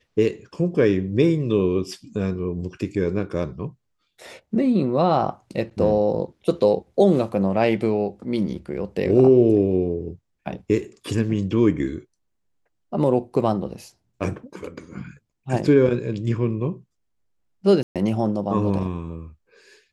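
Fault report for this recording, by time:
0:17.83–0:17.96: drop-out 127 ms

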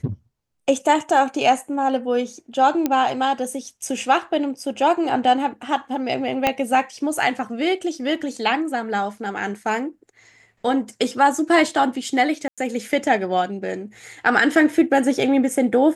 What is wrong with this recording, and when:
0:02.86: click −7 dBFS
0:06.47: click −4 dBFS
0:12.48–0:12.58: drop-out 96 ms

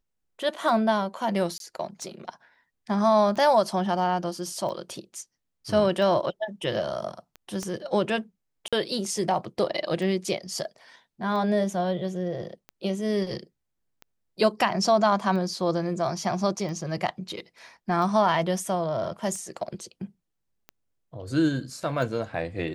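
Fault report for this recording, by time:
scratch tick 45 rpm
0:01.58–0:01.60: drop-out 22 ms
0:07.63: click −19 dBFS
0:08.68–0:08.73: drop-out 46 ms

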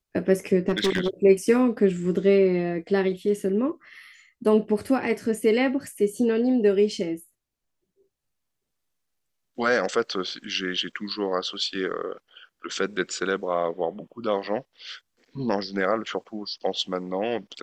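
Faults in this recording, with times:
0:00.68–0:01.08: clipping −18 dBFS

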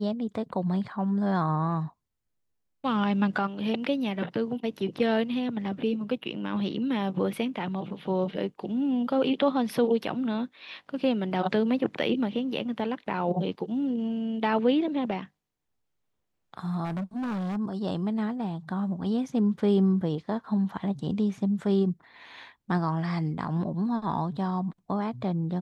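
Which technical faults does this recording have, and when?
0:16.84–0:17.57: clipping −28.5 dBFS

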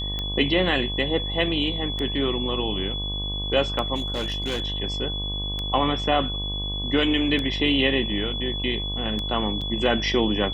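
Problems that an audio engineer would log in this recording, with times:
mains buzz 50 Hz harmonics 23 −31 dBFS
scratch tick 33 1/3 rpm −16 dBFS
whistle 3,400 Hz −29 dBFS
0:03.95–0:04.62: clipping −22.5 dBFS
0:09.61–0:09.62: drop-out 5.5 ms

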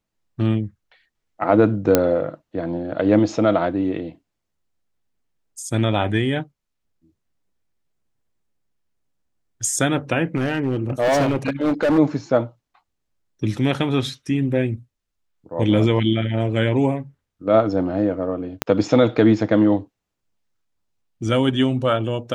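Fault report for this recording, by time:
0:01.95: click 0 dBFS
0:10.35–0:11.99: clipping −15 dBFS
0:18.62: click −4 dBFS

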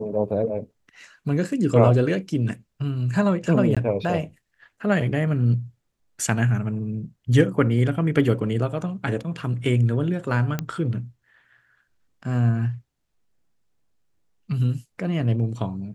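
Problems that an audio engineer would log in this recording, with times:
0:03.75–0:03.77: drop-out 16 ms
0:10.59: click −12 dBFS

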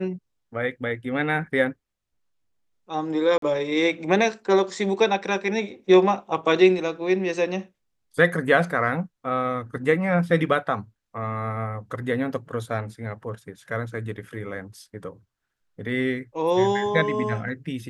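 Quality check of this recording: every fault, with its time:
0:03.38–0:03.42: drop-out 43 ms

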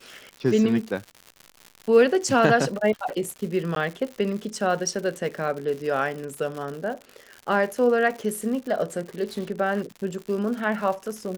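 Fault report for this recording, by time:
surface crackle 150 per second −32 dBFS
0:03.75–0:03.76: drop-out 12 ms

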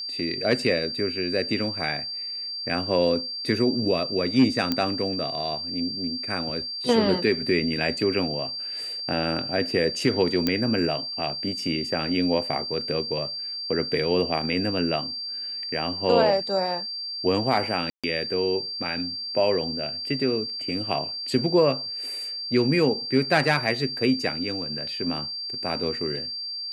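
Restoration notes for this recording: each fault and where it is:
whistle 4,700 Hz −30 dBFS
0:04.72: click −10 dBFS
0:10.47: click −9 dBFS
0:17.90–0:18.04: drop-out 136 ms

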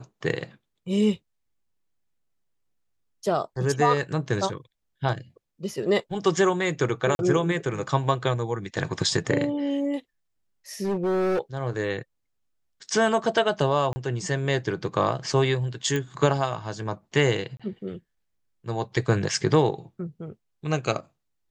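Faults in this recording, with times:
0:07.15–0:07.19: drop-out 41 ms
0:10.83–0:11.39: clipping −22 dBFS
0:13.93–0:13.96: drop-out 30 ms
0:15.96: click −15 dBFS
0:17.57–0:17.60: drop-out 26 ms

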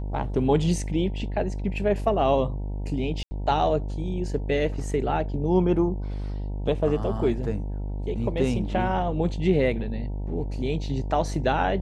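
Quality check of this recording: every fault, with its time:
mains buzz 50 Hz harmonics 19 −30 dBFS
0:03.23–0:03.31: drop-out 80 ms

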